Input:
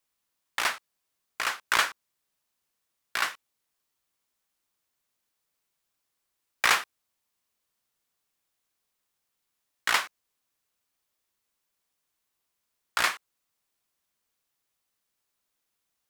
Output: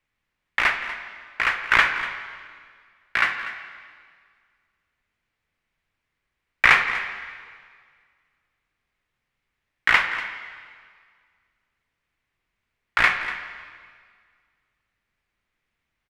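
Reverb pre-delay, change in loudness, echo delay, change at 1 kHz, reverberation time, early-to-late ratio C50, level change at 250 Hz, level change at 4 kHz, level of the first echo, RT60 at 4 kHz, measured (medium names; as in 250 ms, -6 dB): 7 ms, +6.0 dB, 242 ms, +5.5 dB, 1.9 s, 7.0 dB, +7.5 dB, +1.5 dB, -14.5 dB, 1.8 s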